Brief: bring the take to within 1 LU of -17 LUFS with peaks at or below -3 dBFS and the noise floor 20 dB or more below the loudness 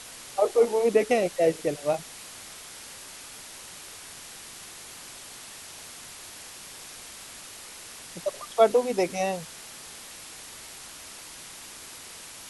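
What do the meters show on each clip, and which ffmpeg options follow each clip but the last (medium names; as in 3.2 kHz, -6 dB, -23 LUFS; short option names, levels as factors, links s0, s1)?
noise floor -44 dBFS; noise floor target -45 dBFS; loudness -25.0 LUFS; peak level -6.5 dBFS; loudness target -17.0 LUFS
-> -af "afftdn=nr=6:nf=-44"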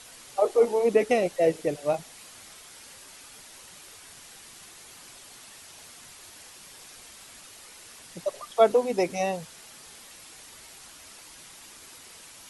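noise floor -49 dBFS; loudness -25.5 LUFS; peak level -6.5 dBFS; loudness target -17.0 LUFS
-> -af "volume=2.66,alimiter=limit=0.708:level=0:latency=1"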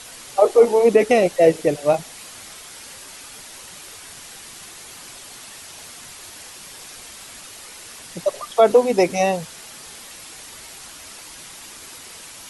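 loudness -17.5 LUFS; peak level -3.0 dBFS; noise floor -40 dBFS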